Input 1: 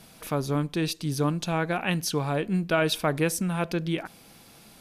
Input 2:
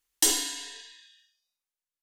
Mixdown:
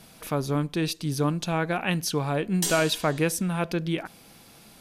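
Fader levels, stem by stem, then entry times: +0.5, -5.5 dB; 0.00, 2.40 s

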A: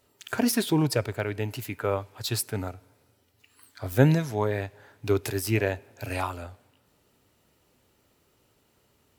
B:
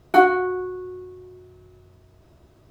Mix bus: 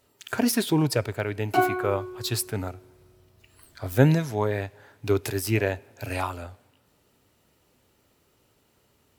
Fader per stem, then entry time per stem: +1.0, -7.5 dB; 0.00, 1.40 s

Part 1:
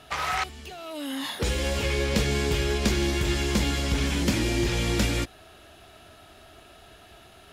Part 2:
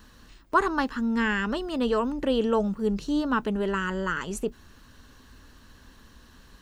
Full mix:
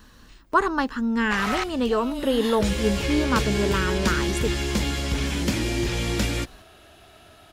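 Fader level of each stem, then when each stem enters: 0.0, +2.0 dB; 1.20, 0.00 s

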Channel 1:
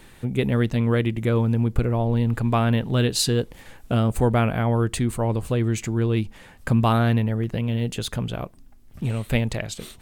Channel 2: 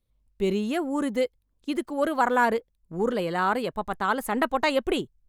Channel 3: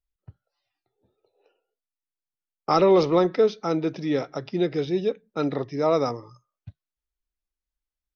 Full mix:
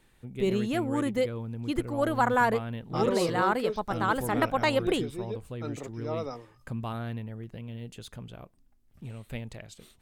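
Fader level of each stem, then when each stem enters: -15.5, -2.0, -12.5 dB; 0.00, 0.00, 0.25 s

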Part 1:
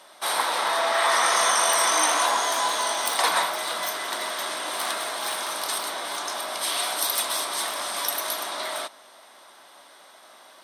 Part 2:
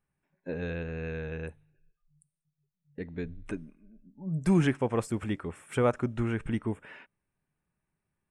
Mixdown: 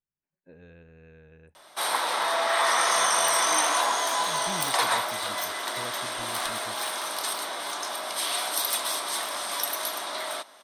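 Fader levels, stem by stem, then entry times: -2.0, -16.5 dB; 1.55, 0.00 s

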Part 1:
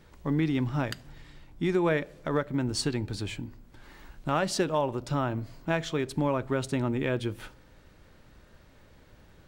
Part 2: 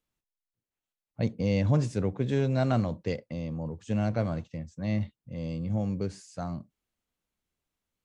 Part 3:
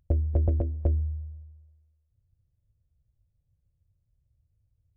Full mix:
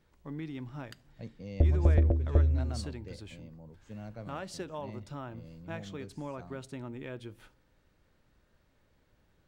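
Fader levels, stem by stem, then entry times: -13.0, -16.0, +1.0 dB; 0.00, 0.00, 1.50 s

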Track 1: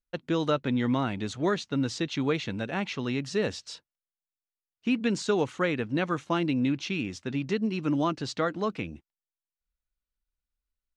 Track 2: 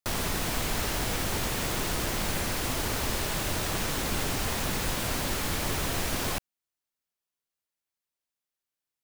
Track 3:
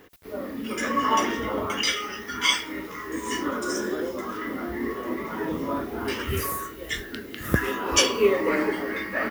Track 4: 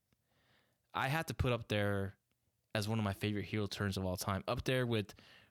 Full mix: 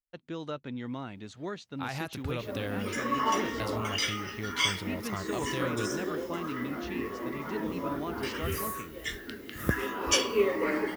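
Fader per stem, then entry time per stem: -11.0 dB, off, -5.5 dB, -1.0 dB; 0.00 s, off, 2.15 s, 0.85 s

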